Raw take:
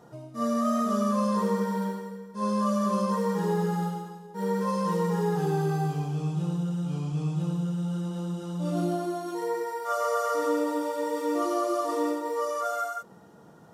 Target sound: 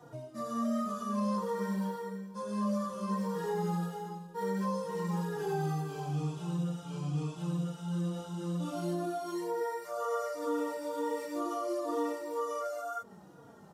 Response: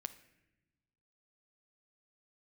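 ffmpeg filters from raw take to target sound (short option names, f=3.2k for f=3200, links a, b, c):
-filter_complex "[0:a]acrossover=split=150|590[a][b][c];[a]acompressor=threshold=-42dB:ratio=4[d];[b]acompressor=threshold=-34dB:ratio=4[e];[c]acompressor=threshold=-37dB:ratio=4[f];[d][e][f]amix=inputs=3:normalize=0,asplit=2[g][h];[h]adelay=3.6,afreqshift=-2.1[i];[g][i]amix=inputs=2:normalize=1,volume=1.5dB"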